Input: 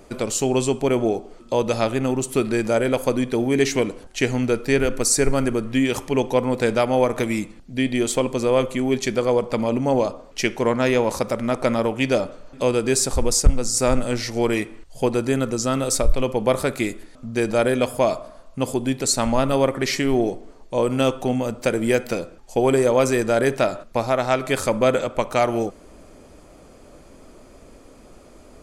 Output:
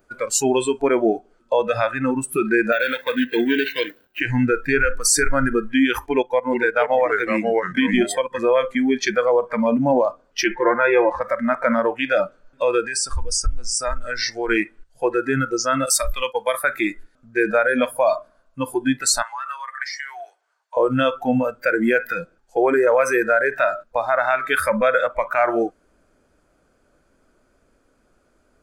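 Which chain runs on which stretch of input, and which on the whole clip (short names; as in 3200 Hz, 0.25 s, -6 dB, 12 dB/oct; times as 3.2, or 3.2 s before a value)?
2.72–4.2 median filter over 25 samples + weighting filter D + careless resampling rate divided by 2×, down none, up hold
6.06–8.39 transient shaper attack +4 dB, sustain -10 dB + echoes that change speed 0.428 s, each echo -2 st, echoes 2, each echo -6 dB
10.44–11.21 LPF 2900 Hz + comb 5.7 ms
12.83–14.49 LPF 8100 Hz + high shelf 5600 Hz +6 dB + compressor 4:1, threshold -22 dBFS
15.86–16.64 expander -23 dBFS + tilt +2.5 dB/oct
19.22–20.77 HPF 840 Hz 24 dB/oct + dynamic EQ 6400 Hz, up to +5 dB, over -43 dBFS, Q 1.4 + compressor 4:1, threshold -31 dBFS
whole clip: bell 1500 Hz +13.5 dB 0.31 oct; limiter -11.5 dBFS; spectral noise reduction 21 dB; gain +5 dB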